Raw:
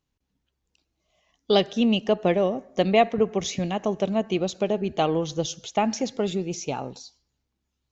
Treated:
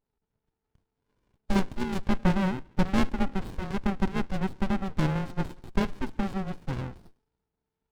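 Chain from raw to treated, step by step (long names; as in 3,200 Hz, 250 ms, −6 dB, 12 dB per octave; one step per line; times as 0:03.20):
frequency shifter +380 Hz
downsampling to 11,025 Hz
windowed peak hold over 65 samples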